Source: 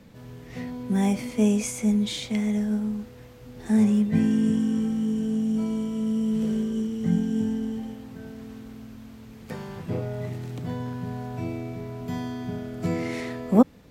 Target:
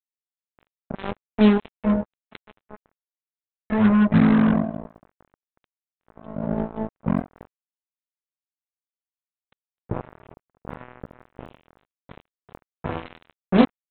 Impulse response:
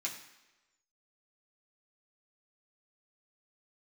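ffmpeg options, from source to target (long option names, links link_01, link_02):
-filter_complex "[0:a]aecho=1:1:61|122:0.106|0.0297,asplit=2[link_01][link_02];[1:a]atrim=start_sample=2205,asetrate=38367,aresample=44100,lowpass=2500[link_03];[link_02][link_03]afir=irnorm=-1:irlink=0,volume=-9dB[link_04];[link_01][link_04]amix=inputs=2:normalize=0,flanger=delay=16:depth=5.7:speed=0.18,lowshelf=frequency=200:gain=5,afftfilt=real='re*gte(hypot(re,im),0.0158)':imag='im*gte(hypot(re,im),0.0158)':win_size=1024:overlap=0.75,aeval=exprs='0.562*(cos(1*acos(clip(val(0)/0.562,-1,1)))-cos(1*PI/2))+0.02*(cos(7*acos(clip(val(0)/0.562,-1,1)))-cos(7*PI/2))':channel_layout=same,adynamicequalizer=threshold=0.00708:dfrequency=1100:dqfactor=0.97:tfrequency=1100:tqfactor=0.97:attack=5:release=100:ratio=0.375:range=1.5:mode=cutabove:tftype=bell,aresample=8000,acrusher=bits=3:mix=0:aa=0.5,aresample=44100,volume=3.5dB"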